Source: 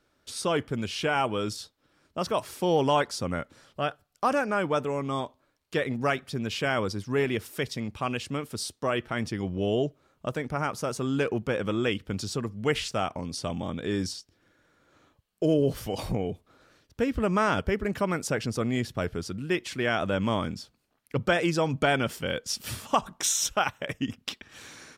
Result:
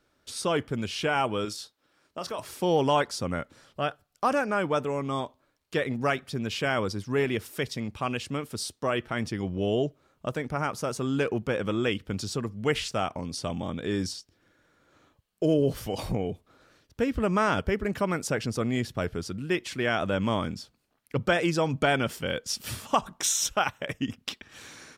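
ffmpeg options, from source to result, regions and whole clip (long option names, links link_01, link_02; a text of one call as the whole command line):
ffmpeg -i in.wav -filter_complex "[0:a]asettb=1/sr,asplit=3[link_01][link_02][link_03];[link_01]atrim=end=1.454[link_04];[link_02]atrim=start=1.45:end=2.39,asetpts=PTS-STARTPTS,afade=type=in:duration=0.004:curve=qsin,afade=type=out:start_time=0.936:duration=0.004:curve=qsin,lowshelf=frequency=210:gain=-12,acompressor=threshold=-29dB:ratio=6:attack=3.2:release=140:knee=1:detection=peak,asplit=2[link_05][link_06];[link_06]adelay=29,volume=-13dB[link_07];[link_05][link_07]amix=inputs=2:normalize=0,atrim=end_sample=41454[link_08];[link_03]atrim=start=2.386[link_09];[link_04][link_08]acrossfade=duration=0.004:curve1=hsin:curve2=qsin[link_10];[link_10][link_09]acrossfade=duration=0.004:curve1=qsin:curve2=hsin" out.wav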